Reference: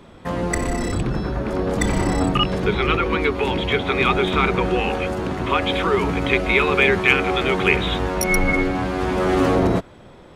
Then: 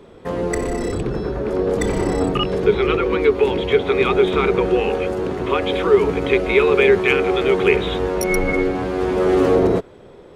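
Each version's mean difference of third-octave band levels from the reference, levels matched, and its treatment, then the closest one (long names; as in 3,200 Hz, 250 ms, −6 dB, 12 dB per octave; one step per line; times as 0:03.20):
4.0 dB: parametric band 430 Hz +11.5 dB 0.63 octaves
level −3 dB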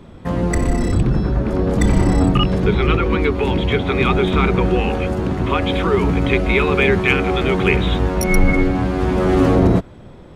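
3.0 dB: low-shelf EQ 340 Hz +10 dB
level −1.5 dB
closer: second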